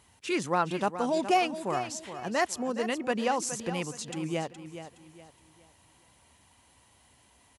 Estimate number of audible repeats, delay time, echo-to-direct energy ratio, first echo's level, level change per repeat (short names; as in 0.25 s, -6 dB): 3, 0.418 s, -10.5 dB, -11.0 dB, -9.5 dB